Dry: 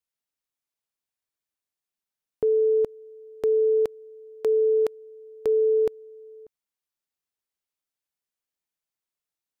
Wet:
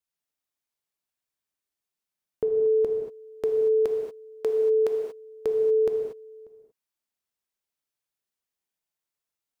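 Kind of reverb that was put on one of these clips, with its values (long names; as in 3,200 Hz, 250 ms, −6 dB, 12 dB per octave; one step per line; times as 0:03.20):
reverb whose tail is shaped and stops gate 260 ms flat, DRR 2.5 dB
level −1 dB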